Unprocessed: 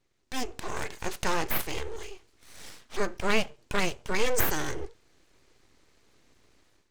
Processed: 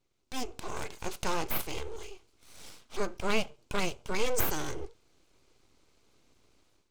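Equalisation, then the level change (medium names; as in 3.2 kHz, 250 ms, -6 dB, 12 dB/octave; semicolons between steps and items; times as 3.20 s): peaking EQ 1.8 kHz -9 dB 0.28 oct; -3.0 dB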